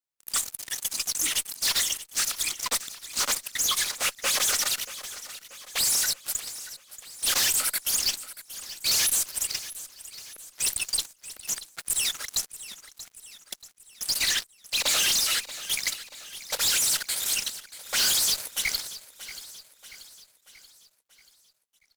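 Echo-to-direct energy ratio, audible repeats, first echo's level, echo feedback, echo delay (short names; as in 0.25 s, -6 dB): -13.5 dB, 4, -15.0 dB, 51%, 0.633 s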